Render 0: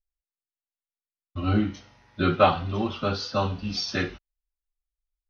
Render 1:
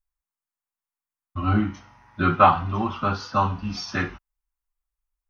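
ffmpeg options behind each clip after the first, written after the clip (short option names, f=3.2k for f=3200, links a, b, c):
-af "equalizer=f=500:t=o:w=1:g=-9,equalizer=f=1k:t=o:w=1:g=9,equalizer=f=4k:t=o:w=1:g=-10,volume=2.5dB"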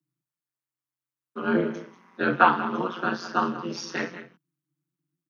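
-af "aecho=1:1:188:0.2,tremolo=f=180:d=0.919,afreqshift=130,volume=1dB"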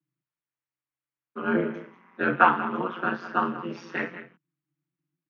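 -af "highshelf=f=3.5k:t=q:w=1.5:g=-12.5,volume=-1.5dB"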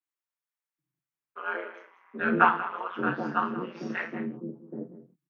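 -filter_complex "[0:a]acrossover=split=520|4200[a][b][c];[c]adelay=30[d];[a]adelay=780[e];[e][b][d]amix=inputs=3:normalize=0,volume=-1.5dB"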